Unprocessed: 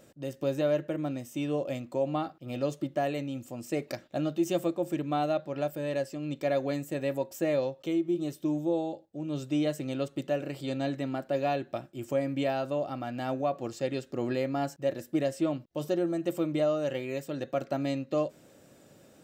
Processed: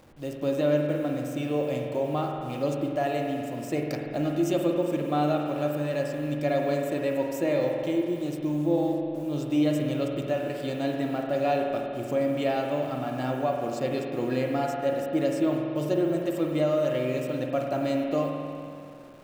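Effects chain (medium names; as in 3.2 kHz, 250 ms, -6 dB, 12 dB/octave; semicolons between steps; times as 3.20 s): send-on-delta sampling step -51.5 dBFS; spring tank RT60 2.5 s, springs 47 ms, chirp 70 ms, DRR 1 dB; trim +1.5 dB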